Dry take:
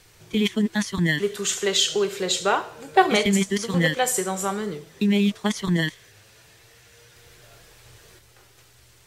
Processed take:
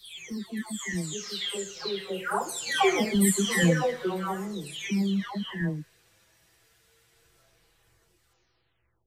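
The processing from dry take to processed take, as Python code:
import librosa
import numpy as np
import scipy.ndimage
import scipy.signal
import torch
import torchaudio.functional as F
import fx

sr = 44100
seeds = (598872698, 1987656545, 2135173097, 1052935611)

y = fx.spec_delay(x, sr, highs='early', ms=763)
y = fx.doppler_pass(y, sr, speed_mps=12, closest_m=12.0, pass_at_s=3.59)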